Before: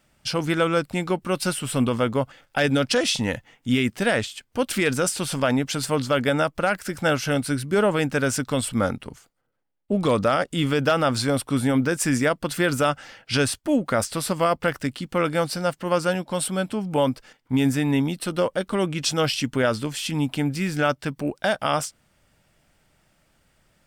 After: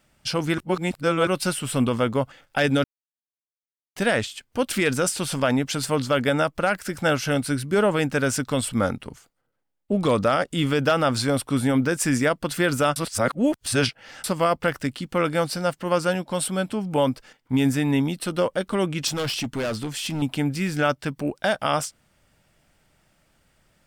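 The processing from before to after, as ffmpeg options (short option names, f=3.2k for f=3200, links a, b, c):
-filter_complex "[0:a]asettb=1/sr,asplit=3[a][b][c];[a]atrim=end=19.074[d];[b]atrim=start=19.07:end=20.22,asetpts=PTS-STARTPTS,afade=t=in:d=0.004:c=qsin,afade=t=out:st=1.146:d=0.004:c=qsin,asoftclip=type=hard:threshold=-23.5dB[e];[c]atrim=start=20.216[f];[d][e]acrossfade=d=0.004:c1=hsin:c2=qsin[g];[g][f]acrossfade=d=0.004:c1=qsin:c2=hsin,asplit=7[h][i][j][k][l][m][n];[h]atrim=end=0.582[o];[i]atrim=start=0.578:end=1.272,asetpts=PTS-STARTPTS,areverse[p];[j]atrim=start=1.268:end=2.84,asetpts=PTS-STARTPTS,afade=t=out:st=1.568:d=0.004:c=hsin[q];[k]atrim=start=2.84:end=3.96,asetpts=PTS-STARTPTS,volume=0[r];[l]atrim=start=3.96:end=12.962,asetpts=PTS-STARTPTS,afade=t=in:d=0.004:c=hsin[s];[m]atrim=start=12.958:end=14.242,asetpts=PTS-STARTPTS,areverse[t];[n]atrim=start=14.238[u];[o][p]acrossfade=d=0.004:c1=hsin:c2=hsin[v];[q][r][s]concat=n=3:v=0:a=1[w];[v][w]acrossfade=d=0.004:c1=hsin:c2=hsin[x];[x][t]acrossfade=d=0.004:c1=hsin:c2=hsin[y];[y][u]acrossfade=d=0.004:c1=hsin:c2=hsin"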